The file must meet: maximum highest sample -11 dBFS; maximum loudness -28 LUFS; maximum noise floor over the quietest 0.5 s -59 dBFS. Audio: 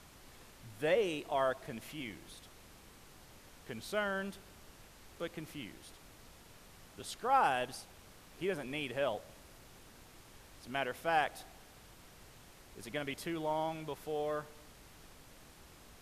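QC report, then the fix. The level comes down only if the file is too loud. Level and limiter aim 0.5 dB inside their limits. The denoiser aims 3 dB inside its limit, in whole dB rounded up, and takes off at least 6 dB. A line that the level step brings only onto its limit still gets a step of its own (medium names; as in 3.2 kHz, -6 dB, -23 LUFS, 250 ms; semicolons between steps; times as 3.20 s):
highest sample -17.0 dBFS: pass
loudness -37.0 LUFS: pass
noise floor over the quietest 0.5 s -57 dBFS: fail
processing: noise reduction 6 dB, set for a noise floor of -57 dBFS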